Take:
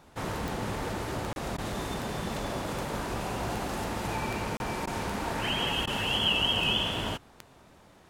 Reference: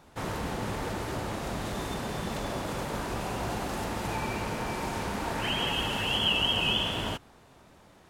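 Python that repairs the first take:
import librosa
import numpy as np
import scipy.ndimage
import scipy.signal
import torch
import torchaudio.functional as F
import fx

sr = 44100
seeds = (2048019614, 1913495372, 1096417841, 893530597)

y = fx.fix_declick_ar(x, sr, threshold=10.0)
y = fx.fix_interpolate(y, sr, at_s=(1.33, 4.57), length_ms=31.0)
y = fx.fix_interpolate(y, sr, at_s=(1.57, 4.86, 5.86), length_ms=11.0)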